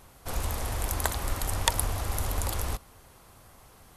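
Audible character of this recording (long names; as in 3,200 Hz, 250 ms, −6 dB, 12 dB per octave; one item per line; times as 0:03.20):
background noise floor −55 dBFS
spectral slope −3.0 dB per octave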